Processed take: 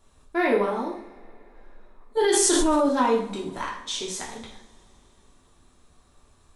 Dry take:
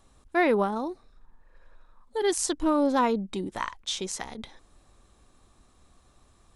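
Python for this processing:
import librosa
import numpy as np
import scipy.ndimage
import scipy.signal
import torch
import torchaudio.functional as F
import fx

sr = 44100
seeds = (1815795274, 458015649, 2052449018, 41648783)

y = fx.rev_double_slope(x, sr, seeds[0], early_s=0.57, late_s=3.8, knee_db=-27, drr_db=-4.5)
y = fx.env_flatten(y, sr, amount_pct=100, at=(2.17, 2.89))
y = y * 10.0 ** (-4.0 / 20.0)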